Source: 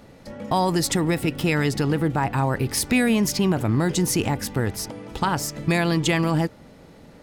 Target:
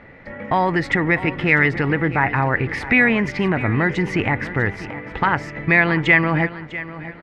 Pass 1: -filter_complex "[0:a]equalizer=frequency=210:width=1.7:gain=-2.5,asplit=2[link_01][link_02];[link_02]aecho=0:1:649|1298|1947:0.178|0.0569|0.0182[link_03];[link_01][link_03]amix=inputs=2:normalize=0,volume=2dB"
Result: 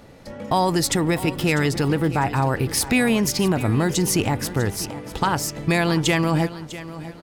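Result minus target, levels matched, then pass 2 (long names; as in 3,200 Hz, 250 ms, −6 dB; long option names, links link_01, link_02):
2,000 Hz band −7.0 dB
-filter_complex "[0:a]lowpass=frequency=2000:width_type=q:width=4.8,equalizer=frequency=210:width=1.7:gain=-2.5,asplit=2[link_01][link_02];[link_02]aecho=0:1:649|1298|1947:0.178|0.0569|0.0182[link_03];[link_01][link_03]amix=inputs=2:normalize=0,volume=2dB"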